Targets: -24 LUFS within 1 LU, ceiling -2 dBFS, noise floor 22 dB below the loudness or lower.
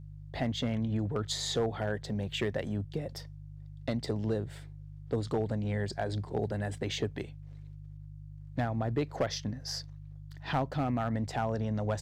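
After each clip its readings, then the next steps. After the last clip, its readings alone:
clipped 0.4%; flat tops at -22.0 dBFS; hum 50 Hz; harmonics up to 150 Hz; hum level -43 dBFS; loudness -34.0 LUFS; peak -22.0 dBFS; loudness target -24.0 LUFS
-> clip repair -22 dBFS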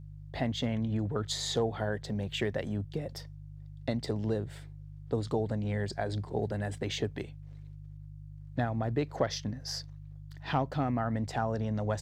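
clipped 0.0%; hum 50 Hz; harmonics up to 150 Hz; hum level -43 dBFS
-> de-hum 50 Hz, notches 3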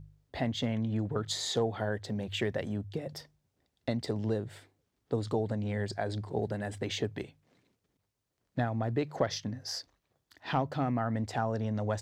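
hum none; loudness -34.0 LUFS; peak -15.5 dBFS; loudness target -24.0 LUFS
-> gain +10 dB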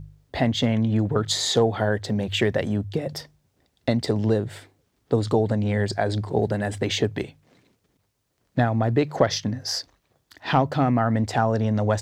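loudness -24.0 LUFS; peak -5.5 dBFS; noise floor -71 dBFS

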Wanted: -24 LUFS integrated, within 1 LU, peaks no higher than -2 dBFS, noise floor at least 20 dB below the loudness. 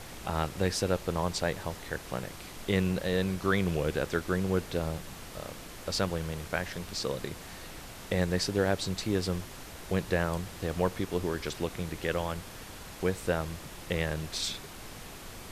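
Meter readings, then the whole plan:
noise floor -45 dBFS; noise floor target -52 dBFS; loudness -32.0 LUFS; peak -13.5 dBFS; loudness target -24.0 LUFS
-> noise print and reduce 7 dB; gain +8 dB

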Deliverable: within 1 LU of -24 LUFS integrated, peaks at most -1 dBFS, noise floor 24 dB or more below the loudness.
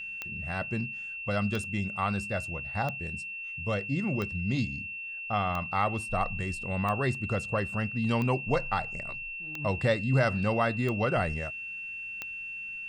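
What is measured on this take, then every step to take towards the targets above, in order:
clicks 10; steady tone 2700 Hz; tone level -36 dBFS; loudness -30.5 LUFS; peak -13.0 dBFS; loudness target -24.0 LUFS
-> de-click; notch 2700 Hz, Q 30; gain +6.5 dB

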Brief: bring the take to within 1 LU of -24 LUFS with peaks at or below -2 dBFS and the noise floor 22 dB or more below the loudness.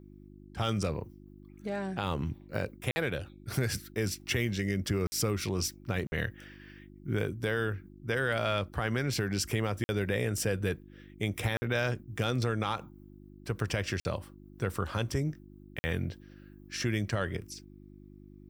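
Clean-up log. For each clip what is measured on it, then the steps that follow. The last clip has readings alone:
dropouts 7; longest dropout 50 ms; hum 50 Hz; harmonics up to 350 Hz; hum level -51 dBFS; loudness -33.0 LUFS; peak -13.5 dBFS; loudness target -24.0 LUFS
-> interpolate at 2.91/5.07/6.07/9.84/11.57/14/15.79, 50 ms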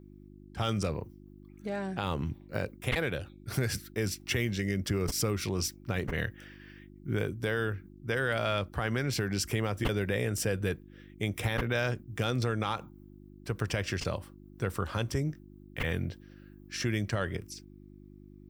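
dropouts 0; hum 50 Hz; harmonics up to 350 Hz; hum level -51 dBFS
-> de-hum 50 Hz, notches 7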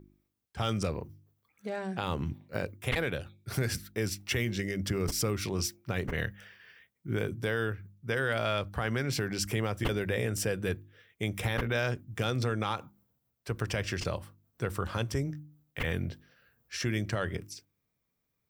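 hum none; loudness -33.0 LUFS; peak -14.0 dBFS; loudness target -24.0 LUFS
-> gain +9 dB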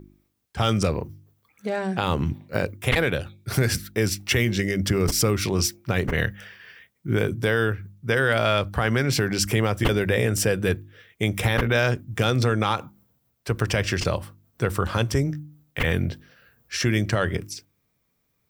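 loudness -24.0 LUFS; peak -5.0 dBFS; noise floor -72 dBFS

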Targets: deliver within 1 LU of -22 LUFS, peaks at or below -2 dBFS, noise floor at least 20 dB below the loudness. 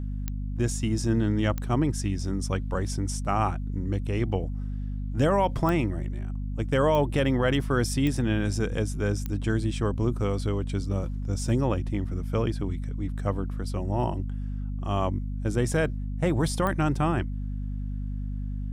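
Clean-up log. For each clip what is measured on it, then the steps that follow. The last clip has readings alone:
clicks 7; hum 50 Hz; harmonics up to 250 Hz; hum level -29 dBFS; loudness -28.0 LUFS; peak -12.0 dBFS; loudness target -22.0 LUFS
-> de-click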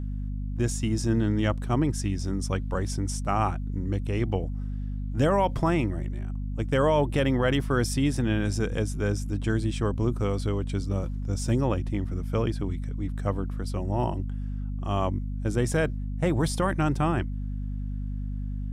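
clicks 0; hum 50 Hz; harmonics up to 250 Hz; hum level -29 dBFS
-> notches 50/100/150/200/250 Hz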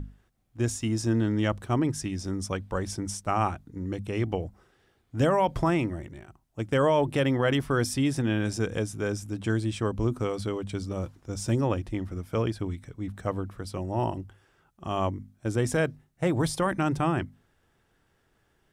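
hum none; loudness -28.5 LUFS; peak -13.0 dBFS; loudness target -22.0 LUFS
-> gain +6.5 dB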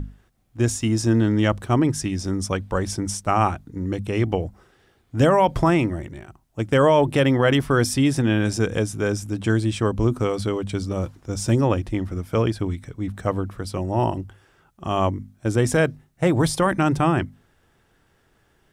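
loudness -22.0 LUFS; peak -6.5 dBFS; noise floor -63 dBFS

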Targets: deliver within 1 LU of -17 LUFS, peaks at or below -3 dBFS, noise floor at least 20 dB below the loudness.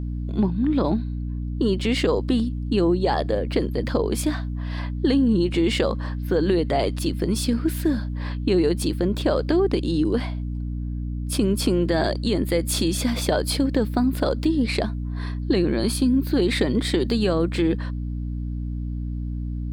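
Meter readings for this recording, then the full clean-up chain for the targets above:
hum 60 Hz; harmonics up to 300 Hz; hum level -25 dBFS; loudness -23.5 LUFS; peak -7.0 dBFS; loudness target -17.0 LUFS
-> notches 60/120/180/240/300 Hz; gain +6.5 dB; limiter -3 dBFS

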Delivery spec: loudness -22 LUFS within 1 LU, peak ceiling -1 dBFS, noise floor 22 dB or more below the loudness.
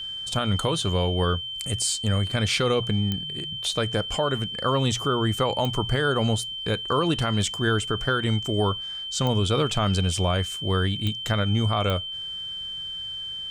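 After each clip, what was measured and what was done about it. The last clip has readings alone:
clicks 5; steady tone 3100 Hz; tone level -31 dBFS; loudness -25.0 LUFS; peak -10.0 dBFS; loudness target -22.0 LUFS
-> de-click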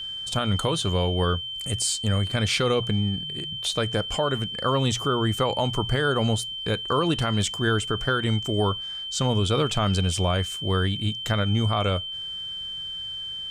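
clicks 0; steady tone 3100 Hz; tone level -31 dBFS
-> notch 3100 Hz, Q 30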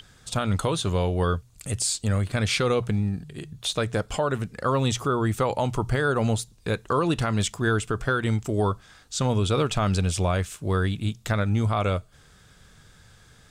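steady tone none; loudness -25.5 LUFS; peak -13.5 dBFS; loudness target -22.0 LUFS
-> gain +3.5 dB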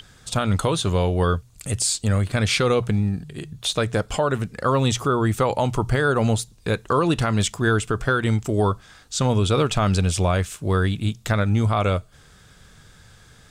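loudness -22.0 LUFS; peak -10.0 dBFS; noise floor -51 dBFS

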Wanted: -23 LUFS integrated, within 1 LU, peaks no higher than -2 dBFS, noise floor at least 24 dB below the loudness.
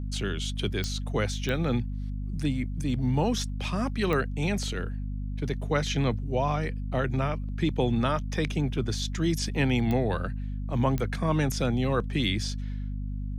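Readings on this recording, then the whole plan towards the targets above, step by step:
clicks 5; hum 50 Hz; harmonics up to 250 Hz; hum level -30 dBFS; loudness -29.0 LUFS; peak -12.5 dBFS; loudness target -23.0 LUFS
-> de-click; notches 50/100/150/200/250 Hz; gain +6 dB

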